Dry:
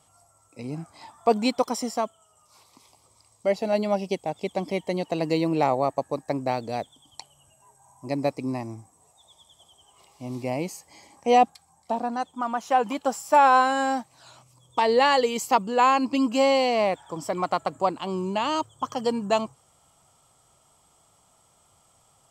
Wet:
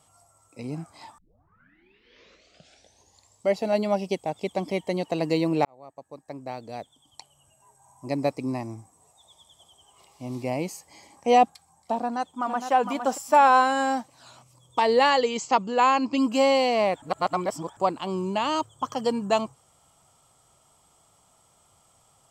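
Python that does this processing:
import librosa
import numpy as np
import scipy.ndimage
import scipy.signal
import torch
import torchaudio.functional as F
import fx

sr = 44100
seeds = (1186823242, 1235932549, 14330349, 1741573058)

y = fx.echo_throw(x, sr, start_s=12.0, length_s=0.71, ms=460, feedback_pct=35, wet_db=-7.0)
y = fx.ellip_lowpass(y, sr, hz=7200.0, order=4, stop_db=60, at=(15.1, 16.18))
y = fx.edit(y, sr, fx.tape_start(start_s=1.18, length_s=2.3),
    fx.fade_in_span(start_s=5.65, length_s=2.43),
    fx.reverse_span(start_s=17.02, length_s=0.75), tone=tone)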